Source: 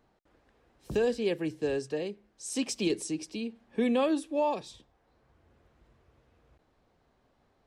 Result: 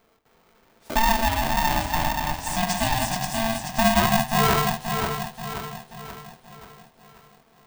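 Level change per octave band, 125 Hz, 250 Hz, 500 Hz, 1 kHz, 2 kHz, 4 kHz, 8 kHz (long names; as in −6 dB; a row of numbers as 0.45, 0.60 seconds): +17.0, +4.0, +2.0, +17.0, +16.5, +13.5, +11.5 decibels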